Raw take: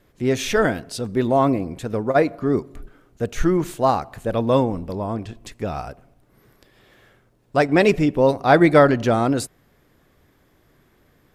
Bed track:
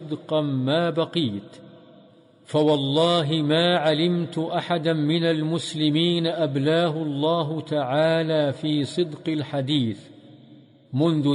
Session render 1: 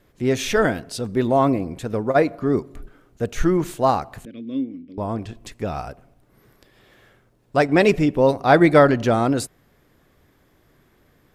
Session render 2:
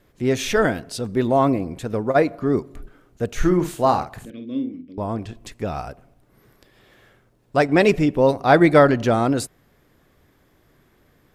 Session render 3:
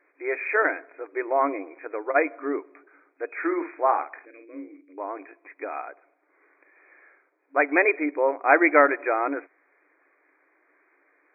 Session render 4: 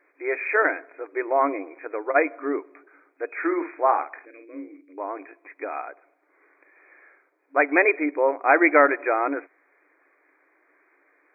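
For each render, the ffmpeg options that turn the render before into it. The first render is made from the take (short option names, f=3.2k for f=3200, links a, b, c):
-filter_complex "[0:a]asettb=1/sr,asplit=3[a][b][c];[a]atrim=end=4.254[d];[b]atrim=start=4.25:end=4.98,asetpts=PTS-STARTPTS,afade=t=in:d=0.004:c=qsin,afade=t=out:st=0.726:d=0.004:c=qsin,asplit=3[e][f][g];[e]bandpass=f=270:t=q:w=8,volume=0dB[h];[f]bandpass=f=2.29k:t=q:w=8,volume=-6dB[i];[g]bandpass=f=3.01k:t=q:w=8,volume=-9dB[j];[h][i][j]amix=inputs=3:normalize=0[k];[c]atrim=start=4.976[l];[d][k]acrossfade=d=0.004:c1=hsin:c2=qsin[m];[m][l]acrossfade=d=0.004:c1=qsin:c2=hsin"
-filter_complex "[0:a]asettb=1/sr,asplit=3[a][b][c];[a]atrim=end=3.374[d];[b]atrim=start=3.37:end=4.81,asetpts=PTS-STARTPTS,afade=t=in:d=0.004:c=qsin,afade=t=out:st=1.436:d=0.004:c=qsin,asplit=2[e][f];[f]adelay=50,volume=-8dB[g];[e][g]amix=inputs=2:normalize=0,atrim=end_sample=63504[h];[c]atrim=start=4.806[i];[d][h]acrossfade=d=0.004:c1=hsin:c2=qsin[j];[j][i]acrossfade=d=0.004:c1=qsin:c2=hsin"
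-af "tiltshelf=f=1.3k:g=-8.5,afftfilt=real='re*between(b*sr/4096,270,2500)':imag='im*between(b*sr/4096,270,2500)':win_size=4096:overlap=0.75"
-af "volume=1.5dB,alimiter=limit=-3dB:level=0:latency=1"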